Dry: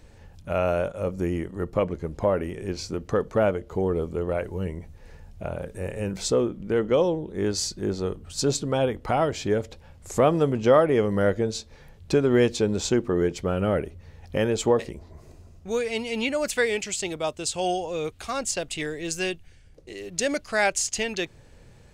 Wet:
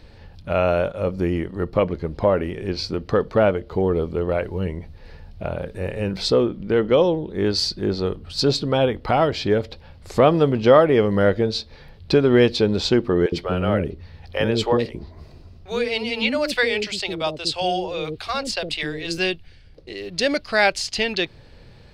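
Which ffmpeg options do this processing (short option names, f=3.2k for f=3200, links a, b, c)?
-filter_complex "[0:a]asettb=1/sr,asplit=3[a][b][c];[a]atrim=end=13.264[d];[b]atrim=start=13.26:end=19.18,asetpts=PTS-STARTPTS,afade=t=in:d=0.004:c=qsin,afade=t=out:st=5.916:d=0.004:c=qsin,acrossover=split=450[e][f];[e]adelay=60[g];[g][f]amix=inputs=2:normalize=0,atrim=end_sample=261072[h];[c]atrim=start=19.176[i];[d][h]acrossfade=d=0.004:c1=hsin:c2=qsin[j];[j][i]acrossfade=d=0.004:c1=qsin:c2=hsin,highshelf=f=5.6k:t=q:w=3:g=-7.5,volume=4.5dB"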